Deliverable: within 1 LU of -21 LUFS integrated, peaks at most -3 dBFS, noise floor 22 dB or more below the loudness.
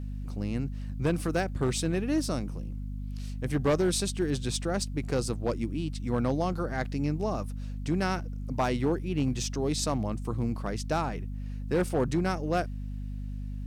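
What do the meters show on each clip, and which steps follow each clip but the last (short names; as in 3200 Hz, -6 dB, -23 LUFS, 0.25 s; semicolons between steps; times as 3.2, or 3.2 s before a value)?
clipped 0.9%; flat tops at -20.0 dBFS; hum 50 Hz; harmonics up to 250 Hz; hum level -33 dBFS; loudness -30.5 LUFS; peak -20.0 dBFS; loudness target -21.0 LUFS
-> clip repair -20 dBFS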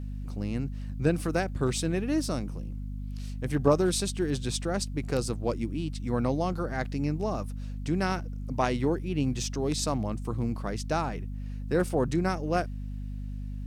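clipped 0.0%; hum 50 Hz; harmonics up to 250 Hz; hum level -33 dBFS
-> de-hum 50 Hz, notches 5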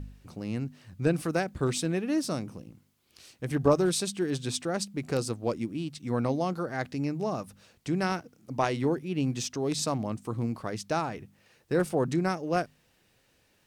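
hum none; loudness -30.5 LUFS; peak -10.5 dBFS; loudness target -21.0 LUFS
-> gain +9.5 dB; limiter -3 dBFS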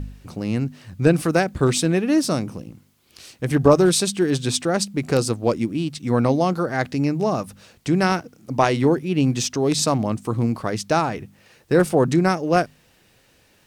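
loudness -21.0 LUFS; peak -3.0 dBFS; noise floor -58 dBFS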